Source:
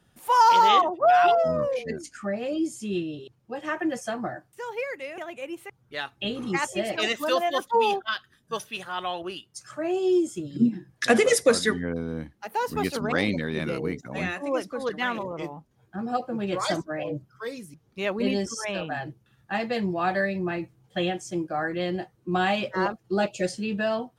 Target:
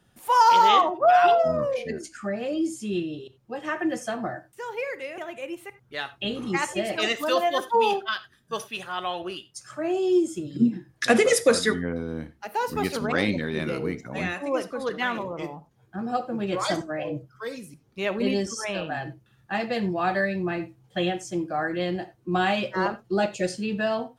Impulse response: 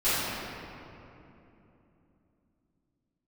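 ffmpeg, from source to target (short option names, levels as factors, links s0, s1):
-filter_complex "[0:a]asplit=2[s0][s1];[1:a]atrim=start_sample=2205,atrim=end_sample=4410[s2];[s1][s2]afir=irnorm=-1:irlink=0,volume=0.0708[s3];[s0][s3]amix=inputs=2:normalize=0"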